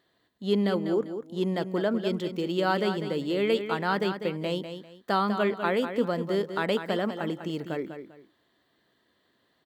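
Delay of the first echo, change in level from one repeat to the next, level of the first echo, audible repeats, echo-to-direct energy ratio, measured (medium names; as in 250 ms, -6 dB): 198 ms, -11.5 dB, -9.0 dB, 2, -8.5 dB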